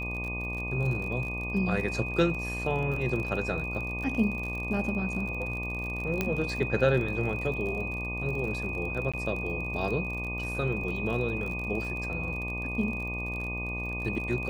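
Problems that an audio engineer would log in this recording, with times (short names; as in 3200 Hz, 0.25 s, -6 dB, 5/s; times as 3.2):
buzz 60 Hz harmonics 20 -36 dBFS
crackle 43/s -35 dBFS
tone 2500 Hz -34 dBFS
6.21 pop -13 dBFS
9.12–9.14 gap 16 ms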